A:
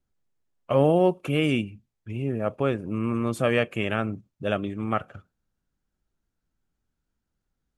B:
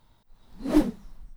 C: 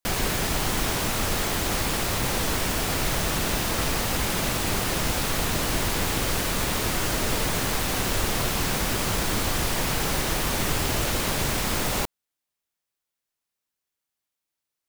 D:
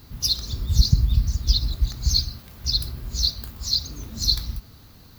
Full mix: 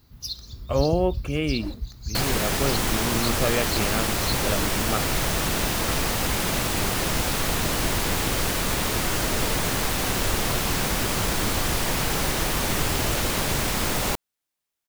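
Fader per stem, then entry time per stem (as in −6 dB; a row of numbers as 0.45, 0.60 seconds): −2.5, −15.0, +1.0, −10.5 decibels; 0.00, 0.90, 2.10, 0.00 seconds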